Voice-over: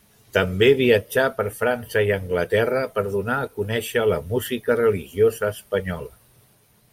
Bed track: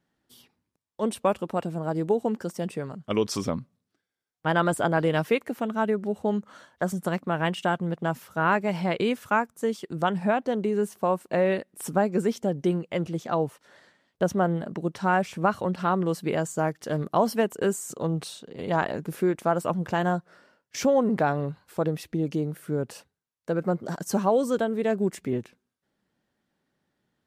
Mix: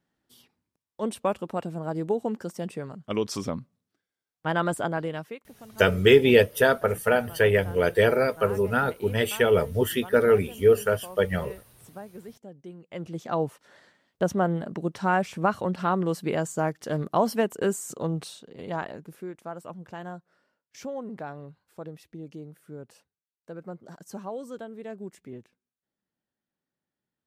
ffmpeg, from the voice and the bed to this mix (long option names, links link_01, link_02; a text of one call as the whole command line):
ffmpeg -i stem1.wav -i stem2.wav -filter_complex "[0:a]adelay=5450,volume=-0.5dB[link_01];[1:a]volume=15.5dB,afade=type=out:start_time=4.74:duration=0.64:silence=0.158489,afade=type=in:start_time=12.77:duration=0.66:silence=0.125893,afade=type=out:start_time=17.93:duration=1.28:silence=0.223872[link_02];[link_01][link_02]amix=inputs=2:normalize=0" out.wav